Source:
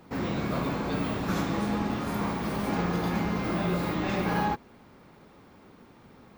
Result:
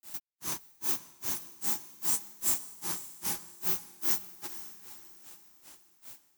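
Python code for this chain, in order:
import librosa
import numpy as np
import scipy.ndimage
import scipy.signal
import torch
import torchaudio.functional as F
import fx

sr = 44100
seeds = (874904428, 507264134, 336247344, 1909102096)

p1 = fx.formant_shift(x, sr, semitones=-3)
p2 = fx.curve_eq(p1, sr, hz=(140.0, 220.0, 360.0, 530.0, 870.0, 3200.0, 6300.0, 16000.0), db=(0, -4, 6, -20, 0, -17, 13, 14))
p3 = fx.rider(p2, sr, range_db=10, speed_s=0.5)
p4 = p2 + (p3 * 10.0 ** (3.0 / 20.0))
p5 = librosa.effects.preemphasis(p4, coef=0.97, zi=[0.0])
p6 = fx.quant_companded(p5, sr, bits=4)
p7 = fx.granulator(p6, sr, seeds[0], grain_ms=202.0, per_s=2.5, spray_ms=100.0, spread_st=0)
p8 = p7 + fx.echo_diffused(p7, sr, ms=480, feedback_pct=42, wet_db=-13.0, dry=0)
y = p8 * 10.0 ** (4.5 / 20.0)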